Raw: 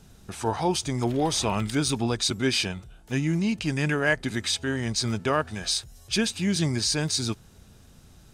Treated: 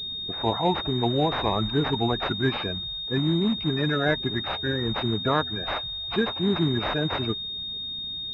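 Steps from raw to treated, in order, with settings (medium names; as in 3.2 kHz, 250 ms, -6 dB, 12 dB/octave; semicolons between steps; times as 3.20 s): coarse spectral quantiser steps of 30 dB; class-D stage that switches slowly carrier 3.7 kHz; trim +2 dB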